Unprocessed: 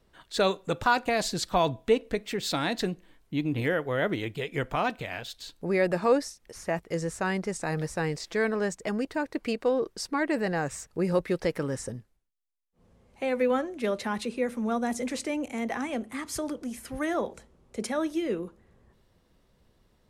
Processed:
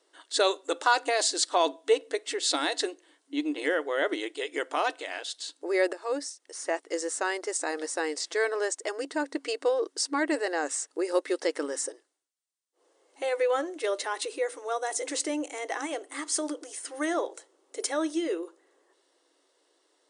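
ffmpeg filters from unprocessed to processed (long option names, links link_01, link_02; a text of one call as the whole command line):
ffmpeg -i in.wav -filter_complex "[0:a]asplit=2[link_01][link_02];[link_01]atrim=end=5.93,asetpts=PTS-STARTPTS,afade=type=out:start_time=5.926:duration=0.004:curve=hsin:silence=0.199526[link_03];[link_02]atrim=start=5.93,asetpts=PTS-STARTPTS,afade=type=in:duration=0.73:silence=0.199526[link_04];[link_03][link_04]concat=n=2:v=0:a=1,bandreject=frequency=2400:width=9.3,afftfilt=real='re*between(b*sr/4096,270,9900)':imag='im*between(b*sr/4096,270,9900)':win_size=4096:overlap=0.75,aemphasis=mode=production:type=50kf" out.wav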